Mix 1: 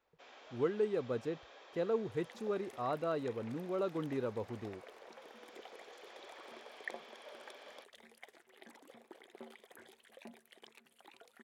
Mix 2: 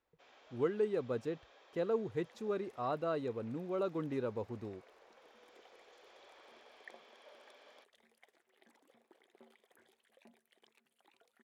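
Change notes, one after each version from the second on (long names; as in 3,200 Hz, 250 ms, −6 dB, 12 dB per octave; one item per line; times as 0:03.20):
first sound −6.0 dB
second sound −10.5 dB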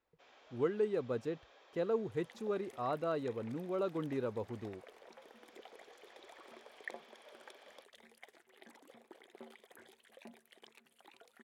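second sound +9.0 dB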